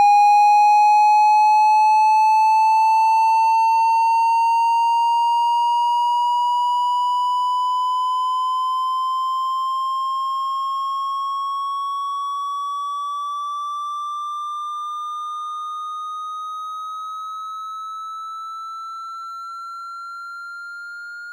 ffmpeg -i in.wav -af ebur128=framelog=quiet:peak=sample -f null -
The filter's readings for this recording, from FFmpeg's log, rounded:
Integrated loudness:
  I:         -18.5 LUFS
  Threshold: -29.3 LUFS
Loudness range:
  LRA:        15.2 LU
  Threshold: -39.9 LUFS
  LRA low:   -29.8 LUFS
  LRA high:  -14.6 LUFS
Sample peak:
  Peak:       -7.5 dBFS